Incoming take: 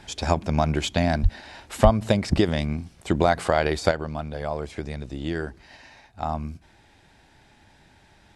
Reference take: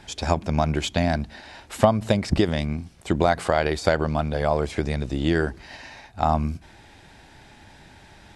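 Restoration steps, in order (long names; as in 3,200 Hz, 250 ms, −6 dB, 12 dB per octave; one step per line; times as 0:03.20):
0:01.22–0:01.34: high-pass filter 140 Hz 24 dB per octave
0:01.83–0:01.95: high-pass filter 140 Hz 24 dB per octave
0:03.91: level correction +7 dB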